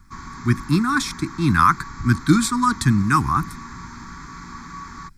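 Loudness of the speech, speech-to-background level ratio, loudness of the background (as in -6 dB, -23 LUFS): -19.5 LUFS, 17.0 dB, -36.5 LUFS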